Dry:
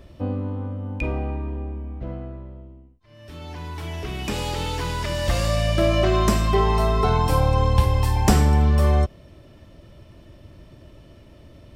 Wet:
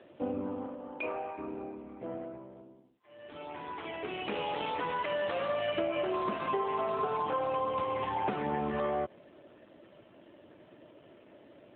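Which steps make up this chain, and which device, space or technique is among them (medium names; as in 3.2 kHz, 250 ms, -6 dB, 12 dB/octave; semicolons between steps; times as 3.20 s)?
0.65–1.37 s: high-pass 220 Hz -> 660 Hz 12 dB/octave; voicemail (band-pass 320–3100 Hz; compression 10:1, threshold -27 dBFS, peak gain reduction 10.5 dB; AMR-NB 7.4 kbps 8 kHz)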